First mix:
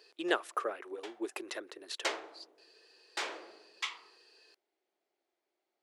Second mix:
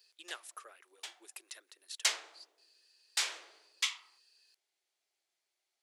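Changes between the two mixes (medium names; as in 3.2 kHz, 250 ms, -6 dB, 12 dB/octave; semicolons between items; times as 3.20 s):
background +12.0 dB; master: add differentiator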